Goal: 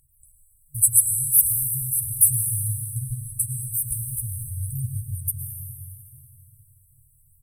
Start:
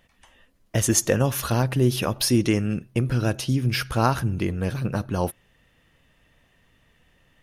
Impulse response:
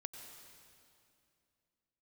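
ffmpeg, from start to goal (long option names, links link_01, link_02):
-filter_complex "[0:a]asettb=1/sr,asplit=3[link_01][link_02][link_03];[link_01]atrim=end=2.774[link_04];[link_02]atrim=start=2.77:end=3.38,asetpts=PTS-STARTPTS,afade=type=in:duration=0.004:curve=qsin,afade=type=out:start_time=0.606:duration=0.004:curve=qsin,lowpass=11000[link_05];[link_03]atrim=start=3.376[link_06];[link_04][link_05]acrossfade=duration=0.004:curve1=hsin:curve2=qsin[link_07];[link_07][link_06]acrossfade=duration=0.004:curve1=qsin:curve2=hsin,asplit=2[link_08][link_09];[link_09]adelay=380,highpass=300,lowpass=3400,asoftclip=type=hard:threshold=-14.5dB,volume=-6dB[link_10];[link_08][link_10]amix=inputs=2:normalize=0,acompressor=threshold=-23dB:ratio=3,crystalizer=i=9:c=0,aphaser=in_gain=1:out_gain=1:delay=1.6:decay=0.63:speed=0.4:type=sinusoidal[link_11];[1:a]atrim=start_sample=2205,asetrate=37044,aresample=44100[link_12];[link_11][link_12]afir=irnorm=-1:irlink=0,afftfilt=real='re*(1-between(b*sr/4096,150,7800))':imag='im*(1-between(b*sr/4096,150,7800))':win_size=4096:overlap=0.75,volume=-4dB"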